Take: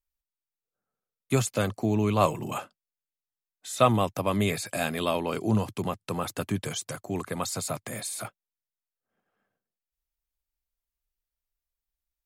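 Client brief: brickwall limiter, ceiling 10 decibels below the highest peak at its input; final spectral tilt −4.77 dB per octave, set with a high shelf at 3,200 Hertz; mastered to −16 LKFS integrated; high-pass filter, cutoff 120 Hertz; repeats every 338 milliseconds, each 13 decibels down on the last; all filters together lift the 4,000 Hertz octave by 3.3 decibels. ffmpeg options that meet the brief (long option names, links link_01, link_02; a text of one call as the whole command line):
ffmpeg -i in.wav -af "highpass=120,highshelf=frequency=3200:gain=-6.5,equalizer=frequency=4000:width_type=o:gain=8.5,alimiter=limit=-17.5dB:level=0:latency=1,aecho=1:1:338|676|1014:0.224|0.0493|0.0108,volume=15dB" out.wav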